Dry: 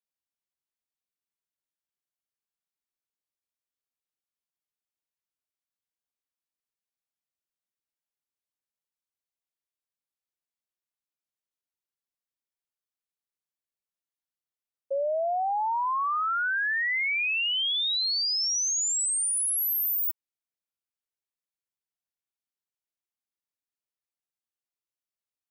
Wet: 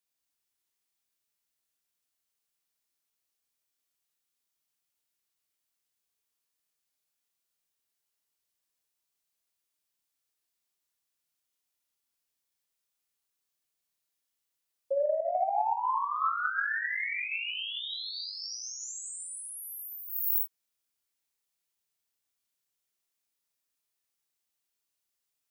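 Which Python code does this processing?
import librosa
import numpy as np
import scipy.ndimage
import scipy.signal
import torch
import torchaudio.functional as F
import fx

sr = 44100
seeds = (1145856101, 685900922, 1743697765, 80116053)

y = fx.high_shelf(x, sr, hz=2700.0, db=6.5)
y = fx.doubler(y, sr, ms=30.0, db=-7)
y = fx.rev_gated(y, sr, seeds[0], gate_ms=340, shape='flat', drr_db=1.0)
y = fx.over_compress(y, sr, threshold_db=-26.0, ratio=-0.5)
y = y * 10.0 ** (-5.5 / 20.0)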